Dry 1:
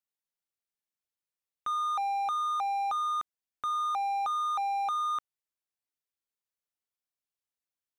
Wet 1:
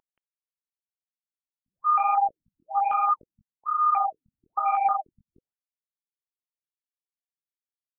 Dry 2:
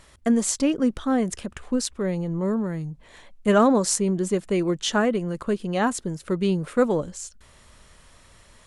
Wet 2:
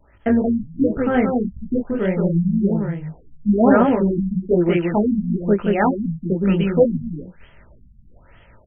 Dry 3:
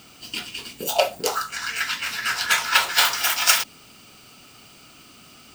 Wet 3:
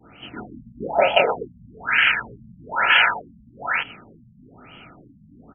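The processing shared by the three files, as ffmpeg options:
-filter_complex "[0:a]asuperstop=centerf=1100:order=4:qfactor=6.6,agate=range=-33dB:threshold=-49dB:ratio=3:detection=peak,tremolo=f=150:d=0.261,adynamicequalizer=threshold=0.0112:dfrequency=2300:dqfactor=1:tfrequency=2300:tqfactor=1:attack=5:release=100:ratio=0.375:range=3.5:mode=boostabove:tftype=bell,flanger=delay=17:depth=7.7:speed=1.3,aeval=exprs='val(0)+0.00794*sin(2*PI*9300*n/s)':c=same,asplit=2[a][b];[b]aecho=0:1:177:0.708[c];[a][c]amix=inputs=2:normalize=0,alimiter=level_in=11dB:limit=-1dB:release=50:level=0:latency=1,afftfilt=real='re*lt(b*sr/1024,220*pow(3400/220,0.5+0.5*sin(2*PI*1.1*pts/sr)))':imag='im*lt(b*sr/1024,220*pow(3400/220,0.5+0.5*sin(2*PI*1.1*pts/sr)))':win_size=1024:overlap=0.75,volume=-2dB"

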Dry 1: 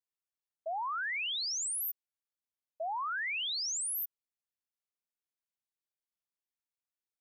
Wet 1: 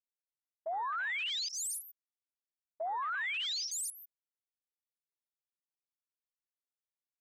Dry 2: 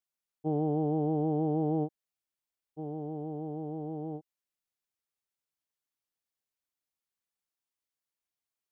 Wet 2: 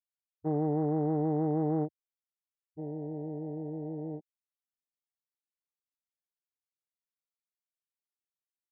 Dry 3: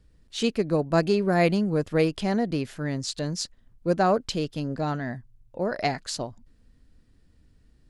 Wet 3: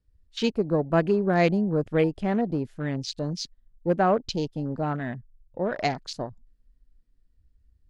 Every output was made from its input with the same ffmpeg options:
-af "afwtdn=0.0141"

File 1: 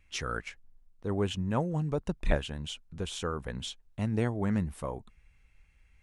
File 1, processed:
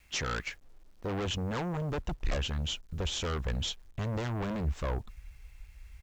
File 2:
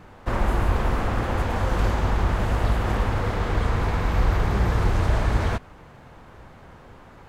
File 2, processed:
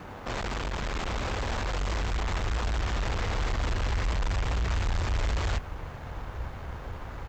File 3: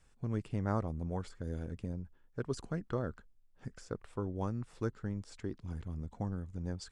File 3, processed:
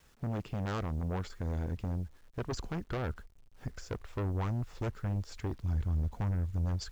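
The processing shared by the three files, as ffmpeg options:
-af "adynamicequalizer=threshold=0.0126:dfrequency=110:dqfactor=4.7:tfrequency=110:tqfactor=4.7:attack=5:release=100:ratio=0.375:range=1.5:mode=cutabove:tftype=bell,aeval=exprs='(tanh(39.8*val(0)+0.75)-tanh(0.75))/39.8':c=same,aresample=16000,aeval=exprs='0.0473*sin(PI/2*2*val(0)/0.0473)':c=same,aresample=44100,acrusher=bits=10:mix=0:aa=0.000001,highpass=f=43:p=1,asubboost=boost=5:cutoff=81"

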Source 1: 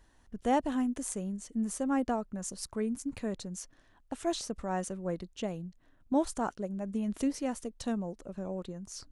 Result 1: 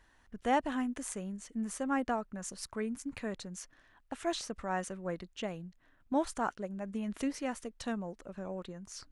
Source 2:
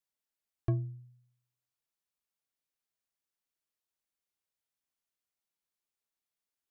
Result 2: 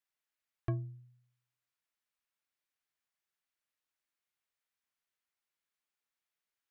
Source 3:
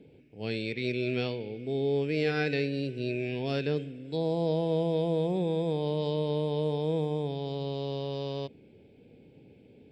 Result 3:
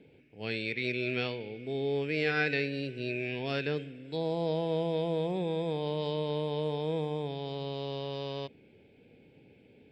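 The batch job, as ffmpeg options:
-af "equalizer=f=1.8k:w=0.6:g=9,volume=-4.5dB"

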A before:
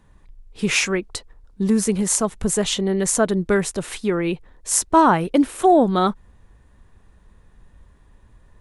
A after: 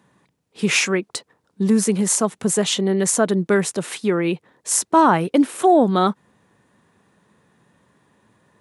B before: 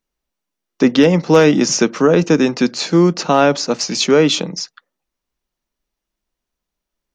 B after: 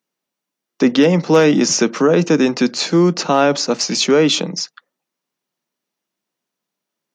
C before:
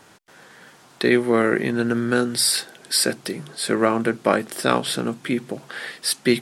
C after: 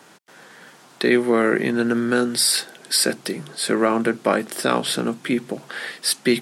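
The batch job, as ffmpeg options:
-filter_complex "[0:a]asplit=2[a][b];[b]alimiter=limit=-10.5dB:level=0:latency=1:release=40,volume=-0.5dB[c];[a][c]amix=inputs=2:normalize=0,highpass=f=140:w=0.5412,highpass=f=140:w=1.3066,volume=-4dB"

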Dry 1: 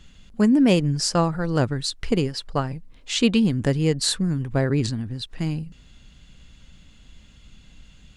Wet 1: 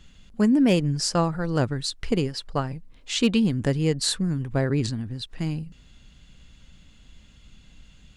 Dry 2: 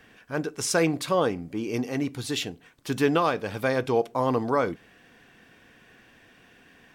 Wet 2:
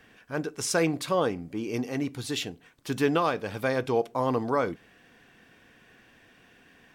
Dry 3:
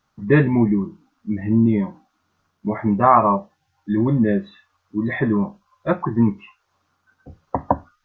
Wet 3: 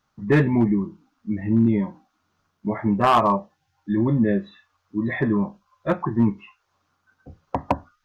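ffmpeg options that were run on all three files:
-af "asoftclip=type=hard:threshold=-8.5dB,volume=-2dB"

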